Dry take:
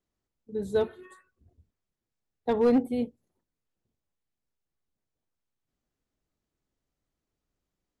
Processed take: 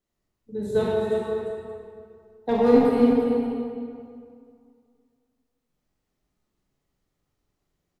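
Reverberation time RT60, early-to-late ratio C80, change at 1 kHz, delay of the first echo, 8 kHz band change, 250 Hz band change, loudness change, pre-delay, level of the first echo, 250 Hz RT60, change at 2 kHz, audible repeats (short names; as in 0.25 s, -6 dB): 2.3 s, -2.0 dB, +8.0 dB, 43 ms, n/a, +7.5 dB, +5.5 dB, 28 ms, -4.5 dB, 2.3 s, +6.5 dB, 2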